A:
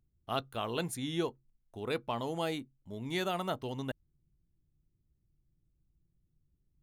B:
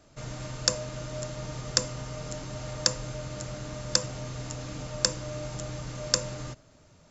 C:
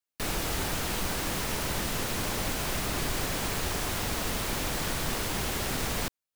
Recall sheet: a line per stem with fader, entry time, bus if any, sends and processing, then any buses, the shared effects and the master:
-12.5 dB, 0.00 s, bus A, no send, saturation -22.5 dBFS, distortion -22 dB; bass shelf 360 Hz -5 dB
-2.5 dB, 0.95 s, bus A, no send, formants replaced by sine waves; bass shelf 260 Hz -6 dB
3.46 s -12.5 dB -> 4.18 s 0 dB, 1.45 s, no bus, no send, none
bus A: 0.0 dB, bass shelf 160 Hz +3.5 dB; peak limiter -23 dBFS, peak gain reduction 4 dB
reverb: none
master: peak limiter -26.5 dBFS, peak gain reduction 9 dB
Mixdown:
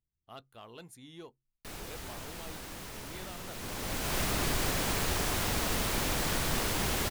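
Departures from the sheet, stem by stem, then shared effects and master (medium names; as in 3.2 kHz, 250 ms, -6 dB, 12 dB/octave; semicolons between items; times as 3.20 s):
stem B: muted; master: missing peak limiter -26.5 dBFS, peak gain reduction 9 dB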